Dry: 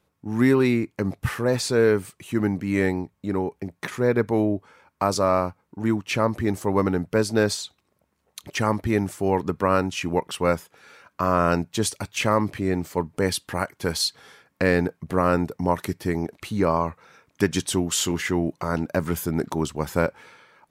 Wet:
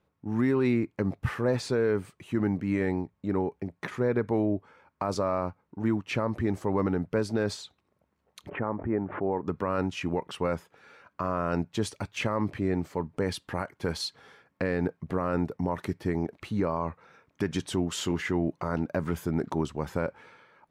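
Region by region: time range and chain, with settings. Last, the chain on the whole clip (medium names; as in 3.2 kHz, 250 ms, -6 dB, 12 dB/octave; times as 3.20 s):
8.49–9.48 s: Gaussian low-pass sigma 5.4 samples + bass shelf 180 Hz -10 dB + swell ahead of each attack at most 99 dB/s
whole clip: low-pass 2.2 kHz 6 dB/octave; peak limiter -14.5 dBFS; trim -2.5 dB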